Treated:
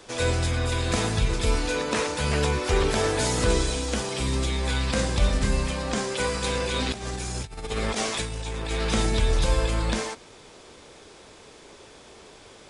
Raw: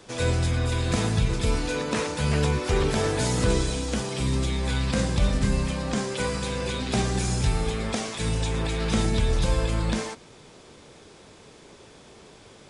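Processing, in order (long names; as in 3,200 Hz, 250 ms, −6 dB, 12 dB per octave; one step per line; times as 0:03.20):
parametric band 150 Hz −7.5 dB 1.6 octaves
0:06.44–0:08.71: compressor whose output falls as the input rises −31 dBFS, ratio −0.5
level +2.5 dB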